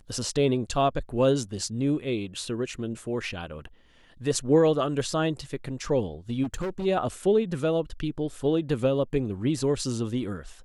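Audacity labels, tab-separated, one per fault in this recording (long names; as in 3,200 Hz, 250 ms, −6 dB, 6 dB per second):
6.430000	6.860000	clipping −27 dBFS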